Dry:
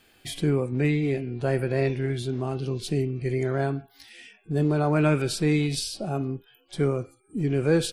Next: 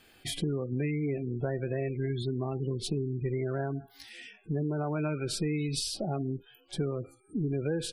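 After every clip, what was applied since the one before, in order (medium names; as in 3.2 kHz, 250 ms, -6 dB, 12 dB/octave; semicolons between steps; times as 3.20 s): spectral gate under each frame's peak -25 dB strong; compression 6:1, threshold -28 dBFS, peak gain reduction 11 dB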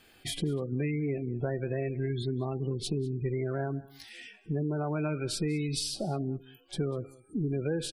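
delay 196 ms -22 dB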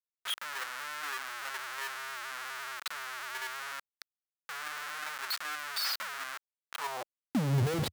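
spectral contrast enhancement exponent 2.7; Schmitt trigger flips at -37.5 dBFS; high-pass sweep 1.4 kHz -> 89 Hz, 6.74–7.70 s; trim +1 dB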